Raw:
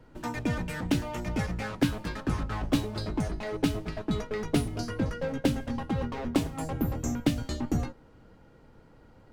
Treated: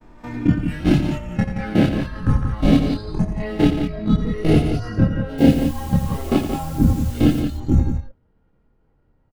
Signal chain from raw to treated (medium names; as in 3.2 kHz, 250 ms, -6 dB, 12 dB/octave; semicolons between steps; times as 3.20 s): reverse spectral sustain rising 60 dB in 0.82 s; expander -44 dBFS; spectral noise reduction 10 dB; tone controls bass +6 dB, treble -11 dB; in parallel at -1 dB: peak limiter -16.5 dBFS, peak gain reduction 9.5 dB; on the sum: level held to a coarse grid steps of 17 dB; 5.38–7.40 s: word length cut 8-bit, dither triangular; chorus voices 4, 0.25 Hz, delay 26 ms, depth 2.7 ms; loudspeakers at several distances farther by 30 m -10 dB, 60 m -8 dB; trim +7.5 dB